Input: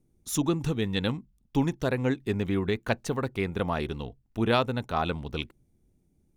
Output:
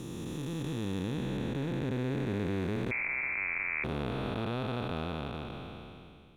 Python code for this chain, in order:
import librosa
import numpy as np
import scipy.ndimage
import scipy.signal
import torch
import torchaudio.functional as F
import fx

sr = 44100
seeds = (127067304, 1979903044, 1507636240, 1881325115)

y = fx.spec_blur(x, sr, span_ms=1320.0)
y = fx.freq_invert(y, sr, carrier_hz=2500, at=(2.91, 3.84))